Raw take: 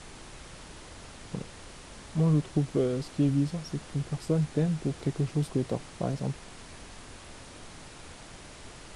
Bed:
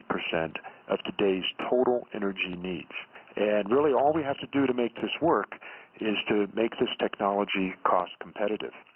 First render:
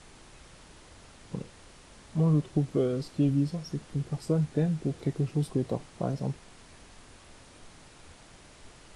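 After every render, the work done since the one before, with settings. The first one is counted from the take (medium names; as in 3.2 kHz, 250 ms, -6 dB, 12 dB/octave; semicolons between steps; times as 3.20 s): noise print and reduce 6 dB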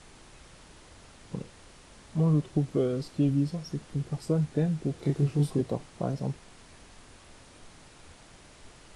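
5.00–5.61 s: doubling 28 ms -2.5 dB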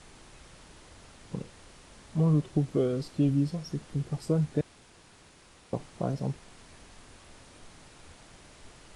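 4.61–5.73 s: room tone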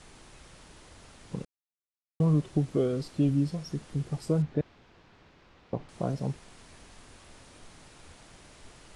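1.45–2.20 s: mute; 4.42–5.89 s: distance through air 210 m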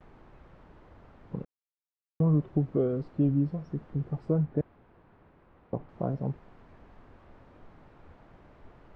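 low-pass 1.3 kHz 12 dB/octave; gate with hold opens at -51 dBFS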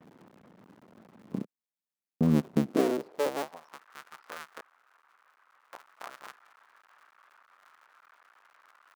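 cycle switcher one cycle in 2, muted; high-pass sweep 200 Hz -> 1.3 kHz, 2.58–3.87 s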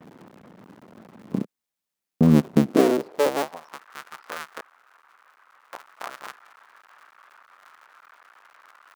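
trim +8 dB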